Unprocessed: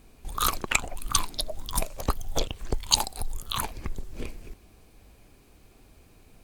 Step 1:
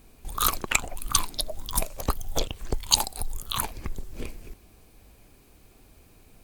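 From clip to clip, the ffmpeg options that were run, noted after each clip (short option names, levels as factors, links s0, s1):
-af "highshelf=f=11000:g=7.5"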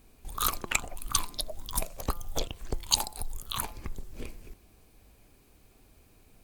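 -af "bandreject=f=171.8:t=h:w=4,bandreject=f=343.6:t=h:w=4,bandreject=f=515.4:t=h:w=4,bandreject=f=687.2:t=h:w=4,bandreject=f=859:t=h:w=4,bandreject=f=1030.8:t=h:w=4,bandreject=f=1202.6:t=h:w=4,bandreject=f=1374.4:t=h:w=4,volume=0.596"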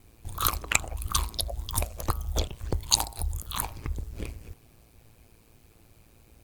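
-af "aeval=exprs='val(0)*sin(2*PI*56*n/s)':c=same,volume=1.78"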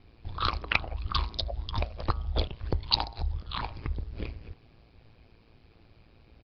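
-af "aresample=11025,aresample=44100"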